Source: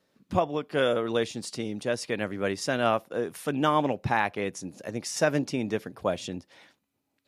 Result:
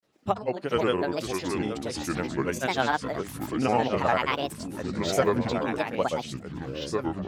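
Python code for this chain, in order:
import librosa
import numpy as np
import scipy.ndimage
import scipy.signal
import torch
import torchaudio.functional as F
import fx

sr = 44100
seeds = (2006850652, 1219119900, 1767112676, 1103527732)

y = fx.granulator(x, sr, seeds[0], grain_ms=100.0, per_s=20.0, spray_ms=100.0, spread_st=7)
y = fx.echo_pitch(y, sr, ms=408, semitones=-4, count=2, db_per_echo=-6.0)
y = fx.hum_notches(y, sr, base_hz=50, count=4)
y = y * 10.0 ** (1.0 / 20.0)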